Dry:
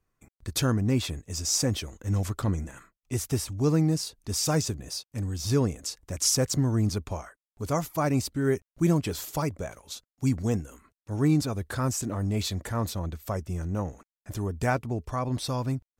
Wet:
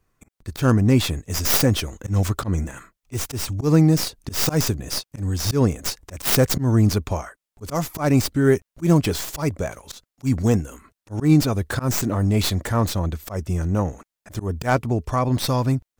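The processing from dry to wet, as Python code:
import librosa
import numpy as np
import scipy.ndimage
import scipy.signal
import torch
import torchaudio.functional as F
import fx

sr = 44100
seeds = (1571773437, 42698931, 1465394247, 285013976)

y = fx.tracing_dist(x, sr, depth_ms=0.2)
y = fx.auto_swell(y, sr, attack_ms=117.0)
y = F.gain(torch.from_numpy(y), 8.5).numpy()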